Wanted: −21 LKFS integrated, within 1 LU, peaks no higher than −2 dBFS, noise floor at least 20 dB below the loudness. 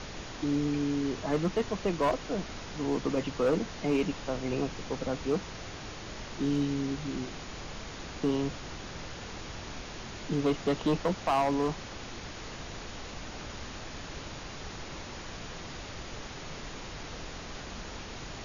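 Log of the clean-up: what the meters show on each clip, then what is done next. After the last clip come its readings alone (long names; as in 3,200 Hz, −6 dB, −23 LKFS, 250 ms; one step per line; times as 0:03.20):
share of clipped samples 0.6%; peaks flattened at −21.0 dBFS; background noise floor −43 dBFS; target noise floor −54 dBFS; integrated loudness −34.0 LKFS; sample peak −21.0 dBFS; target loudness −21.0 LKFS
→ clipped peaks rebuilt −21 dBFS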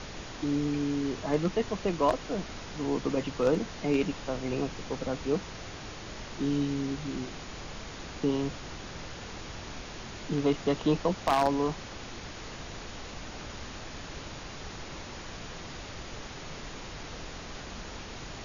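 share of clipped samples 0.0%; background noise floor −43 dBFS; target noise floor −53 dBFS
→ noise reduction from a noise print 10 dB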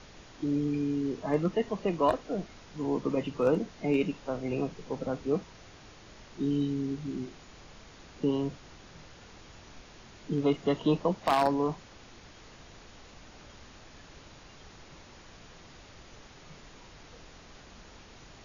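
background noise floor −53 dBFS; integrated loudness −30.5 LKFS; sample peak −12.0 dBFS; target loudness −21.0 LKFS
→ level +9.5 dB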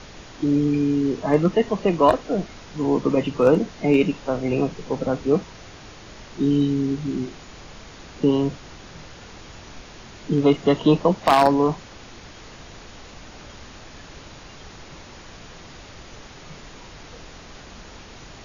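integrated loudness −21.0 LKFS; sample peak −2.5 dBFS; background noise floor −43 dBFS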